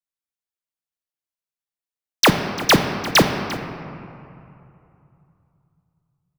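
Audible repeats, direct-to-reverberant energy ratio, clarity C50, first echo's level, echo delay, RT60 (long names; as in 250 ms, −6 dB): 1, 5.5 dB, 7.0 dB, −16.5 dB, 348 ms, 2.7 s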